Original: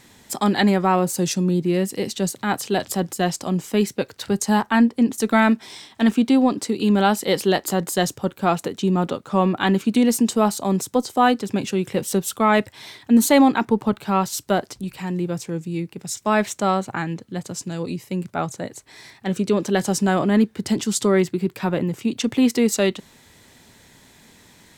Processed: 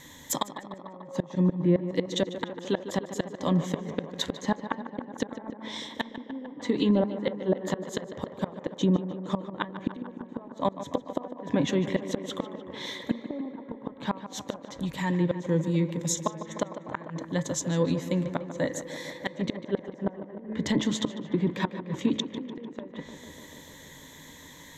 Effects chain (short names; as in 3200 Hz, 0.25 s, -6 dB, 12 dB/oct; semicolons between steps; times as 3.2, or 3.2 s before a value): de-hum 108.8 Hz, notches 23; treble ducked by the level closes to 630 Hz, closed at -13.5 dBFS; ripple EQ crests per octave 1.1, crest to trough 11 dB; flipped gate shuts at -13 dBFS, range -26 dB; tape echo 0.149 s, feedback 88%, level -10.5 dB, low-pass 2700 Hz